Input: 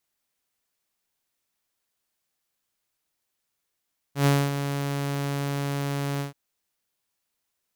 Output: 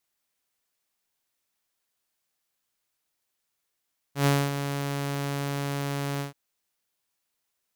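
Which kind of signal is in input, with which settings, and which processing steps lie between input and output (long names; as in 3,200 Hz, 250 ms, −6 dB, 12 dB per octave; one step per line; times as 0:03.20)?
note with an ADSR envelope saw 141 Hz, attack 110 ms, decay 245 ms, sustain −9.5 dB, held 2.05 s, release 130 ms −14 dBFS
low-shelf EQ 360 Hz −3 dB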